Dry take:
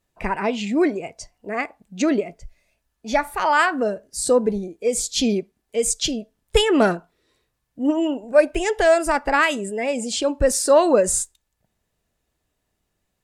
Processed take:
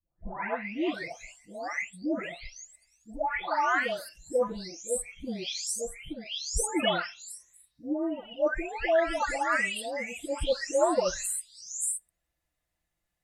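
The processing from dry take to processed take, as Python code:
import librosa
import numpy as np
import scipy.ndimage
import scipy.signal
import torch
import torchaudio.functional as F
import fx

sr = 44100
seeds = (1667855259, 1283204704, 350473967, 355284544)

y = fx.spec_delay(x, sr, highs='late', ms=740)
y = fx.graphic_eq_31(y, sr, hz=(200, 400, 2000), db=(-7, -9, 6))
y = F.gain(torch.from_numpy(y), -6.5).numpy()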